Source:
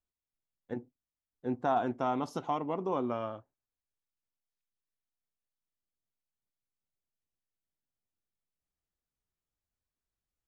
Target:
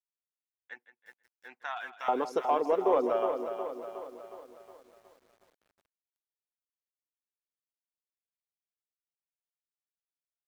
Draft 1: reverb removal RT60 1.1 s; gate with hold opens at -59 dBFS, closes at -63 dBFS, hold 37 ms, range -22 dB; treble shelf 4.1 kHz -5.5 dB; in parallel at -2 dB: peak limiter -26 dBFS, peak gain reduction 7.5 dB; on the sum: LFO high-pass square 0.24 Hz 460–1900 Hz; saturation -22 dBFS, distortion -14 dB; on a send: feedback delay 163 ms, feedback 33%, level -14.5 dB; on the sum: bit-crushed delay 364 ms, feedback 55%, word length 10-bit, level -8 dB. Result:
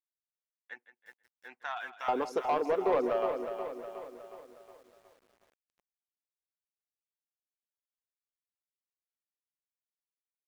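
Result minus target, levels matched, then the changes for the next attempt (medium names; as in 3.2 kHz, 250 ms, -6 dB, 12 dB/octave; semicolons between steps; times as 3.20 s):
saturation: distortion +11 dB
change: saturation -14 dBFS, distortion -25 dB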